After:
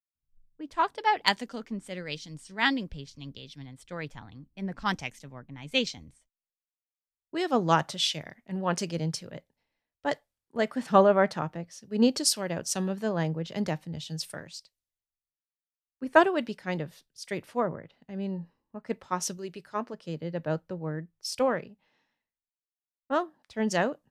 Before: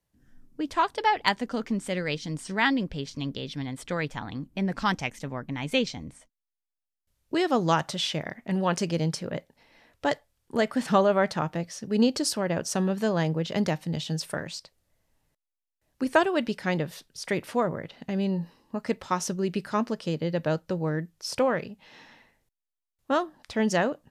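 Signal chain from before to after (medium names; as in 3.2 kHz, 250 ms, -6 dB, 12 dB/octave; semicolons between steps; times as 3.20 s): 19.37–19.94 s: peaking EQ 210 Hz -7 dB 0.58 oct; three bands expanded up and down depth 100%; trim -4.5 dB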